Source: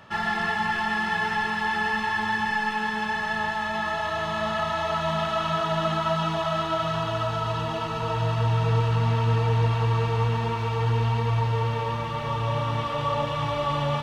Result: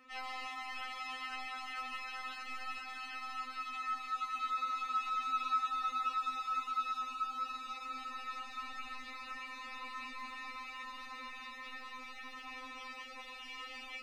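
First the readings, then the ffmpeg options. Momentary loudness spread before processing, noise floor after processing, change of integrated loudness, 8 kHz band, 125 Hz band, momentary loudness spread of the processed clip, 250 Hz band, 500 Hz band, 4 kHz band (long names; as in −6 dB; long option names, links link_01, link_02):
4 LU, −49 dBFS, −14.5 dB, −11.5 dB, below −40 dB, 11 LU, −26.0 dB, below −30 dB, −13.0 dB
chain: -af "afftfilt=real='re*3.46*eq(mod(b,12),0)':imag='im*3.46*eq(mod(b,12),0)':win_size=2048:overlap=0.75,volume=-8dB"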